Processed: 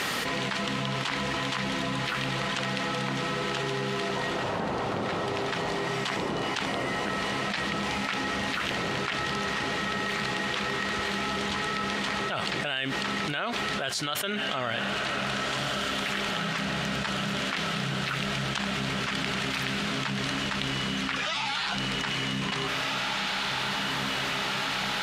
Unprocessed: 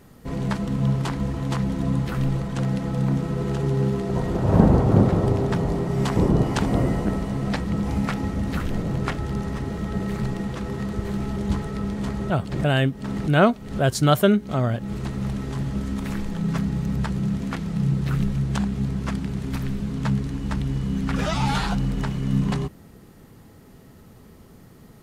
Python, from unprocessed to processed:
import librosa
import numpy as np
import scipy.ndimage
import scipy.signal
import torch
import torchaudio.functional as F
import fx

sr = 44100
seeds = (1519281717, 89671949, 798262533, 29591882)

p1 = fx.bandpass_q(x, sr, hz=2900.0, q=1.1)
p2 = p1 + fx.echo_diffused(p1, sr, ms=1788, feedback_pct=67, wet_db=-15, dry=0)
p3 = fx.env_flatten(p2, sr, amount_pct=100)
y = F.gain(torch.from_numpy(p3), -5.5).numpy()